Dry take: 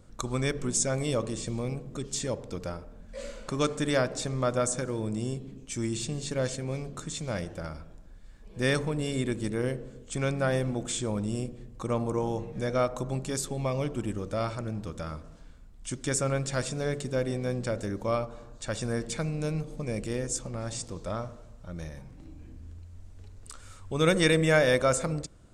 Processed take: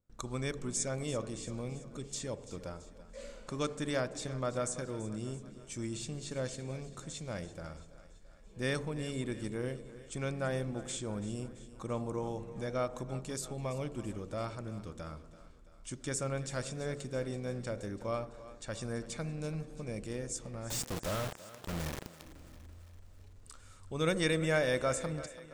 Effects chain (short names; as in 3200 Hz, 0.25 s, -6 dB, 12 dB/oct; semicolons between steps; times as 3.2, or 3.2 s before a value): gate with hold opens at -45 dBFS; 20.7–22.22 companded quantiser 2-bit; thinning echo 0.335 s, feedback 57%, high-pass 210 Hz, level -15.5 dB; gain -7.5 dB